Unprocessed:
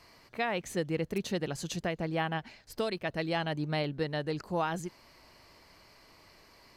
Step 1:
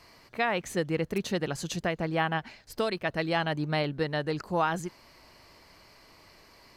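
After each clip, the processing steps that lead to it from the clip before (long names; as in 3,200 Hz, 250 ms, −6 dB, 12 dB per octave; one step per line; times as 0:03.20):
dynamic equaliser 1,300 Hz, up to +4 dB, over −46 dBFS, Q 1.1
level +2.5 dB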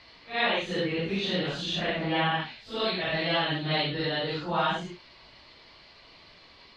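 random phases in long frames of 200 ms
low-pass with resonance 3,600 Hz, resonance Q 4.2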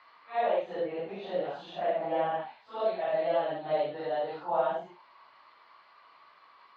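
envelope filter 590–1,200 Hz, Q 3.8, down, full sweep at −23.5 dBFS
level +6.5 dB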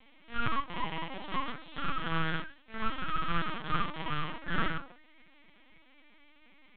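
loose part that buzzes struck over −48 dBFS, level −29 dBFS
full-wave rectification
linear-prediction vocoder at 8 kHz pitch kept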